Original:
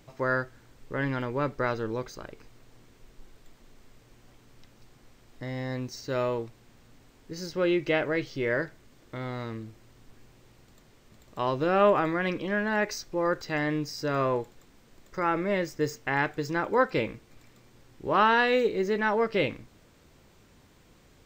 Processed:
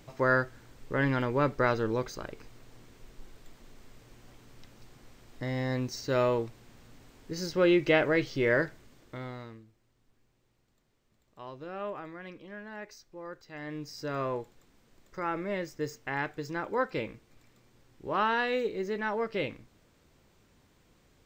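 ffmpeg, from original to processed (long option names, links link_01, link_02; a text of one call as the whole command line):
ffmpeg -i in.wav -af "volume=12dB,afade=type=out:start_time=8.63:duration=0.75:silence=0.334965,afade=type=out:start_time=9.38:duration=0.27:silence=0.375837,afade=type=in:start_time=13.52:duration=0.47:silence=0.316228" out.wav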